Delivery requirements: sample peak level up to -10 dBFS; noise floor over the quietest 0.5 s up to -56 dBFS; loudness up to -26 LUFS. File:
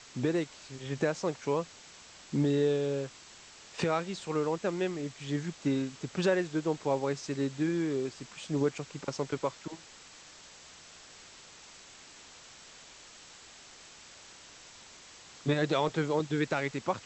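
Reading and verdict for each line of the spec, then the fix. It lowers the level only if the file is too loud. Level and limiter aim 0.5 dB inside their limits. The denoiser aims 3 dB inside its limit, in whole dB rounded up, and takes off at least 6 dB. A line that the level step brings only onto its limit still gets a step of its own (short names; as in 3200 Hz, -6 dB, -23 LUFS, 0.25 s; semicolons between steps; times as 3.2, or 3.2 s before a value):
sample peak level -15.5 dBFS: OK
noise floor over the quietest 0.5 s -53 dBFS: fail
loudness -32.0 LUFS: OK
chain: denoiser 6 dB, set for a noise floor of -53 dBFS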